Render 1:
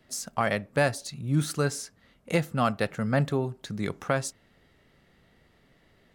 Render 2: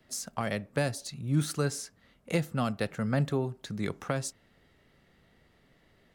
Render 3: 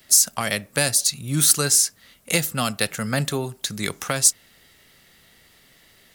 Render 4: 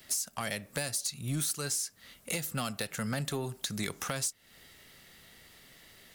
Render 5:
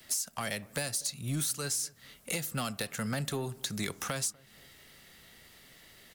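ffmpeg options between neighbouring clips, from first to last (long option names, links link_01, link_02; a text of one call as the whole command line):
ffmpeg -i in.wav -filter_complex "[0:a]acrossover=split=450|3000[link_01][link_02][link_03];[link_02]acompressor=threshold=-30dB:ratio=6[link_04];[link_01][link_04][link_03]amix=inputs=3:normalize=0,volume=-2dB" out.wav
ffmpeg -i in.wav -af "crystalizer=i=9:c=0,volume=2.5dB" out.wav
ffmpeg -i in.wav -af "acompressor=threshold=-27dB:ratio=8,asoftclip=type=tanh:threshold=-22dB,volume=-1.5dB" out.wav
ffmpeg -i in.wav -filter_complex "[0:a]acrossover=split=410|1400|4000[link_01][link_02][link_03][link_04];[link_03]acrusher=bits=4:mode=log:mix=0:aa=0.000001[link_05];[link_01][link_02][link_05][link_04]amix=inputs=4:normalize=0,asplit=2[link_06][link_07];[link_07]adelay=244,lowpass=frequency=830:poles=1,volume=-23dB,asplit=2[link_08][link_09];[link_09]adelay=244,lowpass=frequency=830:poles=1,volume=0.51,asplit=2[link_10][link_11];[link_11]adelay=244,lowpass=frequency=830:poles=1,volume=0.51[link_12];[link_06][link_08][link_10][link_12]amix=inputs=4:normalize=0" out.wav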